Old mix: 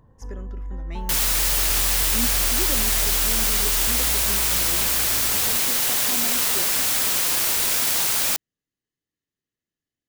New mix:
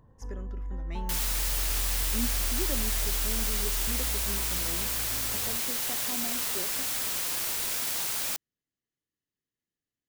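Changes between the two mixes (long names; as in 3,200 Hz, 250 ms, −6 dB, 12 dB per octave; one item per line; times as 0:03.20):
speech −3.5 dB
first sound −3.5 dB
second sound −9.5 dB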